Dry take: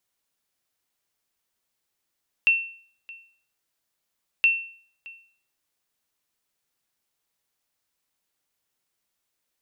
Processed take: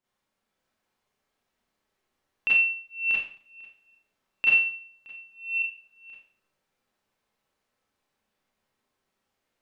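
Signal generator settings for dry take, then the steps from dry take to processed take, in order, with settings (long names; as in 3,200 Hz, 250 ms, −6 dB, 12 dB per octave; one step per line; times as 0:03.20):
ping with an echo 2,700 Hz, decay 0.50 s, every 1.97 s, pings 2, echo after 0.62 s, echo −23 dB −12 dBFS
delay that plays each chunk backwards 558 ms, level −4 dB
low-pass filter 1,300 Hz 6 dB per octave
four-comb reverb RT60 0.48 s, combs from 29 ms, DRR −7.5 dB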